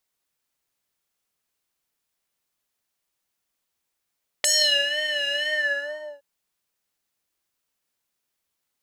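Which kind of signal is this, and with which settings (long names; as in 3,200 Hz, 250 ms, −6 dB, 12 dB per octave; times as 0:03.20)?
subtractive patch with vibrato D5, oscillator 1 square, oscillator 2 square, sub −18 dB, noise −22 dB, filter bandpass, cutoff 740 Hz, Q 3.7, filter envelope 3.5 octaves, filter decay 0.34 s, filter sustain 50%, attack 4.1 ms, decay 0.43 s, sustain −10.5 dB, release 0.76 s, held 1.01 s, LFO 2.1 Hz, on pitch 68 cents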